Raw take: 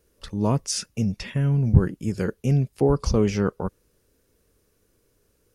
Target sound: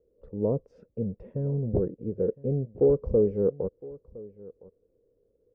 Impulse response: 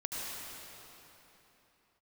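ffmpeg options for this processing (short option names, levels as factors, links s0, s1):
-af "aeval=exprs='0.266*(abs(mod(val(0)/0.266+3,4)-2)-1)':c=same,lowpass=f=490:t=q:w=5.5,aecho=1:1:1012:0.0944,volume=0.355"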